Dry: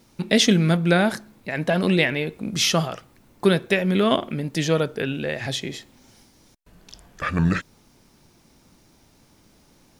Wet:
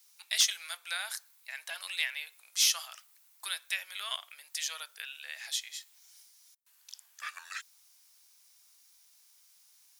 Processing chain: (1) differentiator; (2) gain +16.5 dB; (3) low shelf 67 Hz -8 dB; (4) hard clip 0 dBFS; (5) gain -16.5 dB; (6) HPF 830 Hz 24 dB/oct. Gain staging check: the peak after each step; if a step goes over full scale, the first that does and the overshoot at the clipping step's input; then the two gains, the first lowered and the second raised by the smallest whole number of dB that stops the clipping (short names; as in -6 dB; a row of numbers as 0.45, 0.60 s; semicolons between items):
-10.0, +6.5, +6.5, 0.0, -16.5, -13.0 dBFS; step 2, 6.5 dB; step 2 +9.5 dB, step 5 -9.5 dB